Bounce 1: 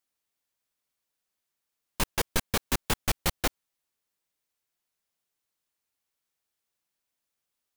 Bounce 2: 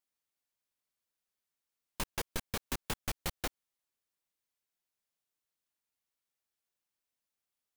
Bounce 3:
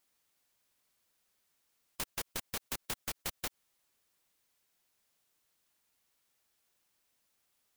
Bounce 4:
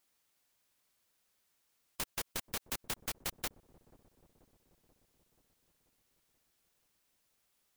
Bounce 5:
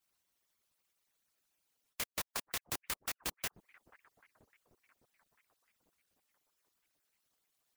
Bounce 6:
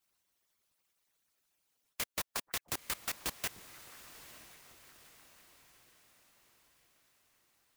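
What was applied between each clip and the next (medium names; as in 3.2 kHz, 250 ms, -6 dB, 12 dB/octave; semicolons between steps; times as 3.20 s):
compression 4:1, threshold -26 dBFS, peak gain reduction 5.5 dB; trim -6 dB
spectrum-flattening compressor 2:1; trim -3 dB
feedback echo behind a low-pass 484 ms, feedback 63%, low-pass 520 Hz, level -16 dB
harmonic-percussive separation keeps percussive; ring modulator with a swept carrier 1.2 kHz, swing 90%, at 3.5 Hz; trim +3 dB
echo that smears into a reverb 928 ms, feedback 51%, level -14.5 dB; trim +1.5 dB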